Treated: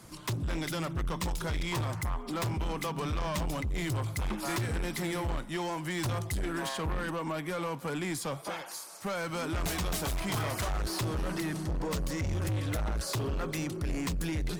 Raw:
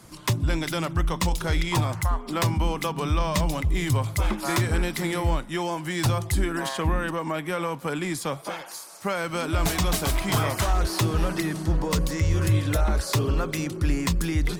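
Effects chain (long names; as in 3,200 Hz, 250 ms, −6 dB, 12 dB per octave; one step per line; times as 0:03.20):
soft clipping −26 dBFS, distortion −9 dB
surface crackle 230 per second −55 dBFS
level −2.5 dB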